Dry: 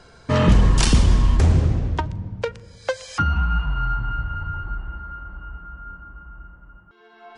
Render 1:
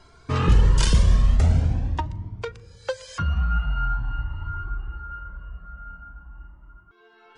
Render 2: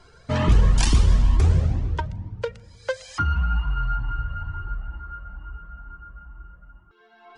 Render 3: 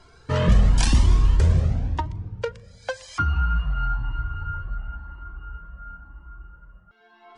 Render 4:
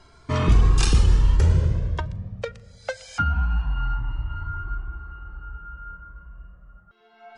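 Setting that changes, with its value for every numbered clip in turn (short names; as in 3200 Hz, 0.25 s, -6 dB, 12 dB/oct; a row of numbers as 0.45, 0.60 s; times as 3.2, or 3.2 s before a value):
cascading flanger, rate: 0.45, 2.2, 0.96, 0.23 Hz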